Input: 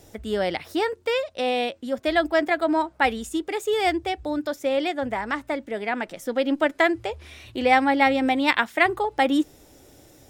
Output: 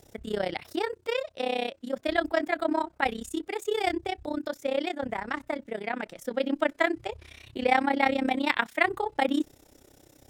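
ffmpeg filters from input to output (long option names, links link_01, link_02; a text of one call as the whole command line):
ffmpeg -i in.wav -af "tremolo=f=32:d=0.889,volume=-1.5dB" out.wav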